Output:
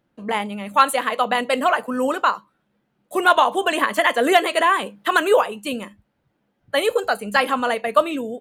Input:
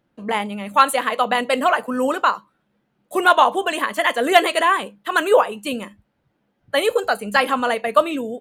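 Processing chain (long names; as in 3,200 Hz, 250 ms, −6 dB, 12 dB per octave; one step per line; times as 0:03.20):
0:03.36–0:05.47: multiband upward and downward compressor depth 70%
level −1 dB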